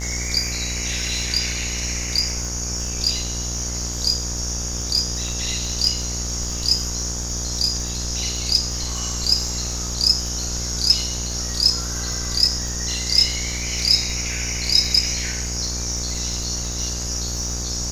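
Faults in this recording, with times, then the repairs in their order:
mains buzz 60 Hz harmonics 31 −29 dBFS
surface crackle 55 per second −29 dBFS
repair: click removal
hum removal 60 Hz, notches 31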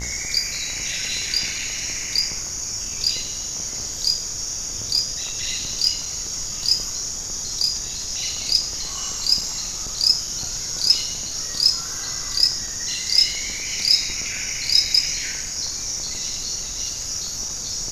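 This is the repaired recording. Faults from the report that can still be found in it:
none of them is left

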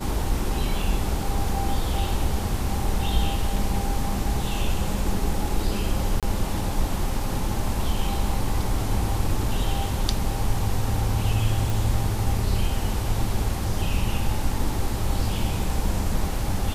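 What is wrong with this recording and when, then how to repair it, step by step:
0:06.20–0:06.23: drop-out 27 ms
0:11.70: click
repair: click removal
repair the gap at 0:06.20, 27 ms

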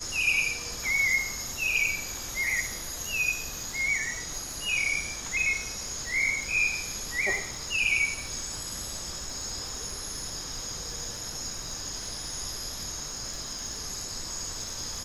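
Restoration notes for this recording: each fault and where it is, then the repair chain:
surface crackle 46 per second −37 dBFS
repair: click removal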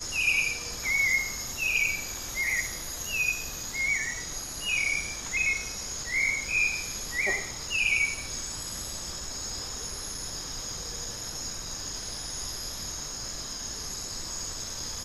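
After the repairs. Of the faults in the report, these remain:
none of them is left

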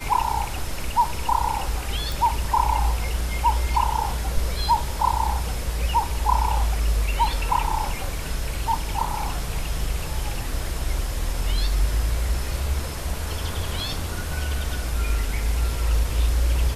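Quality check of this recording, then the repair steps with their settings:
0:02.12: click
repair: click removal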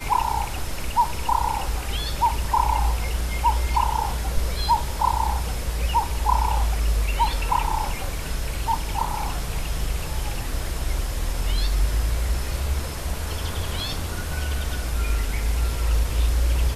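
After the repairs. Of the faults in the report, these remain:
none of them is left

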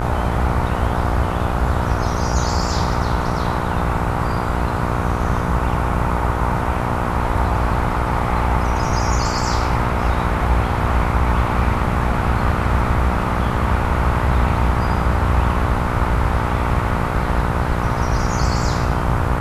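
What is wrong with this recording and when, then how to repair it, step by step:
mains buzz 60 Hz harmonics 25 −23 dBFS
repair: hum removal 60 Hz, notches 25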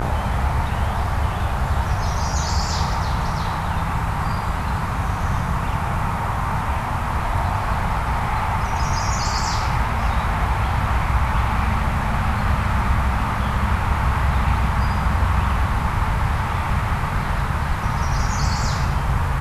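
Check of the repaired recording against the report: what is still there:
none of them is left

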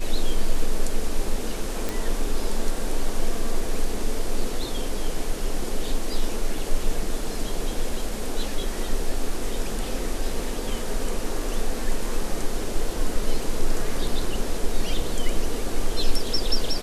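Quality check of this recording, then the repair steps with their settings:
0:01.89: click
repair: click removal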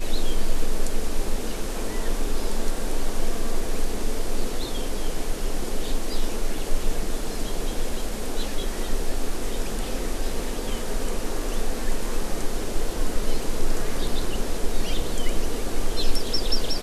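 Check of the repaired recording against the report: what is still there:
none of them is left

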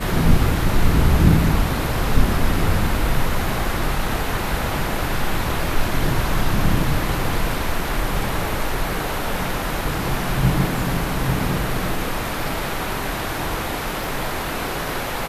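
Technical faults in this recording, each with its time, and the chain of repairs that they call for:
0:14.04: click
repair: click removal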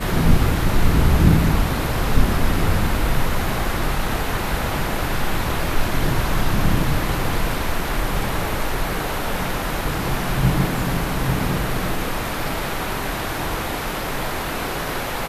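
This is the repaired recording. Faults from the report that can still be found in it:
none of them is left

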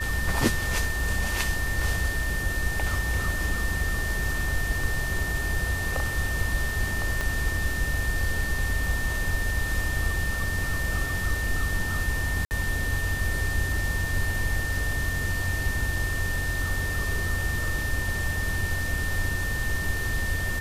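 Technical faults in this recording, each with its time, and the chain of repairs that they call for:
whistle 1,800 Hz −30 dBFS
0:07.21: click −14 dBFS
0:12.45–0:12.51: drop-out 59 ms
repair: click removal
notch filter 1,800 Hz, Q 30
repair the gap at 0:12.45, 59 ms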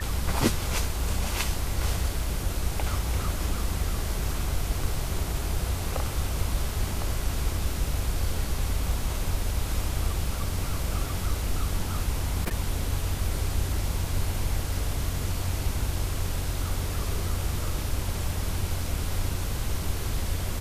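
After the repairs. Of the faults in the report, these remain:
0:07.21: click

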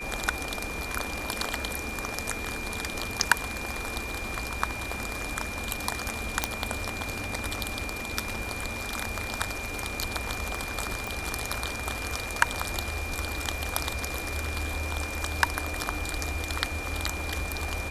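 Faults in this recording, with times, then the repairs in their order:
surface crackle 30 per second −40 dBFS
whistle 2,400 Hz −36 dBFS
0:06.44: click
0:11.07: click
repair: click removal
notch filter 2,400 Hz, Q 30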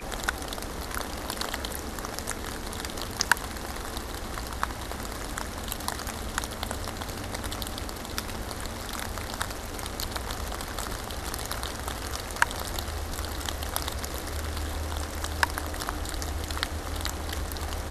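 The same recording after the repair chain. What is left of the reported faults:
0:11.07: click

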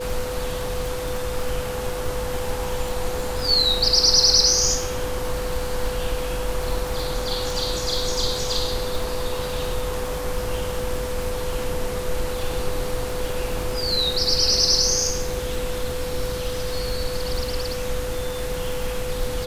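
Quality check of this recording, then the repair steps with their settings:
surface crackle 50 per second −27 dBFS
whistle 500 Hz −28 dBFS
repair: click removal
notch filter 500 Hz, Q 30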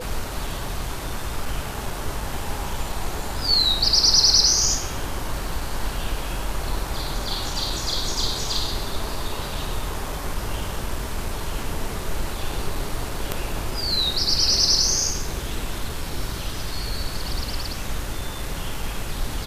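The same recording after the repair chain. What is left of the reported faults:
none of them is left

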